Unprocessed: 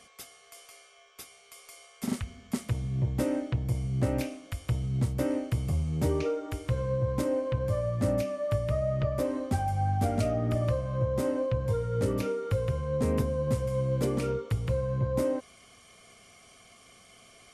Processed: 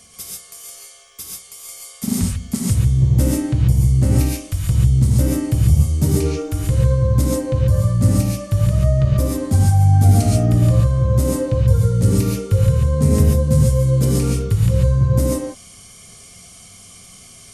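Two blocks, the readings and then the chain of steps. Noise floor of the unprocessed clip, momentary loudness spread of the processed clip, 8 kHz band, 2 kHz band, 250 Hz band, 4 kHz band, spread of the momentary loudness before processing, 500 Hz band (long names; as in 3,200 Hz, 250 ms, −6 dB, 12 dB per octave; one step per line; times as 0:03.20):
−57 dBFS, 16 LU, +18.0 dB, can't be measured, +11.5 dB, +12.0 dB, 8 LU, +5.0 dB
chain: bass and treble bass +14 dB, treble +14 dB
mains-hum notches 60/120 Hz
reverb whose tail is shaped and stops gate 160 ms rising, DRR −3 dB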